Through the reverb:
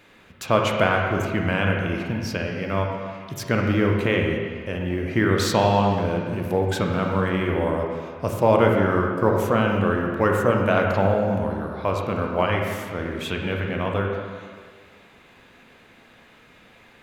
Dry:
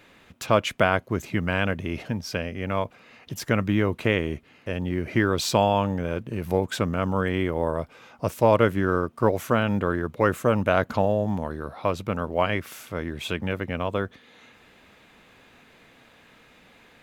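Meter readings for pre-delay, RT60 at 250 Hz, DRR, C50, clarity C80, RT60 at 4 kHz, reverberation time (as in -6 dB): 23 ms, 1.6 s, 0.5 dB, 2.0 dB, 3.5 dB, 1.7 s, 1.8 s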